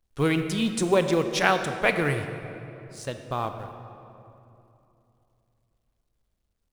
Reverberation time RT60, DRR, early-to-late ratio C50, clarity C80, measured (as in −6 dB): 2.9 s, 7.0 dB, 8.0 dB, 8.5 dB